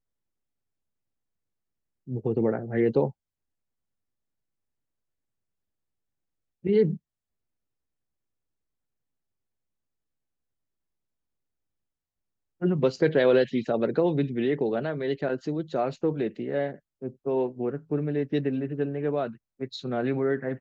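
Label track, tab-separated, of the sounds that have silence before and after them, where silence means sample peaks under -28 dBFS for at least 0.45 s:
2.100000	3.080000	sound
6.650000	6.940000	sound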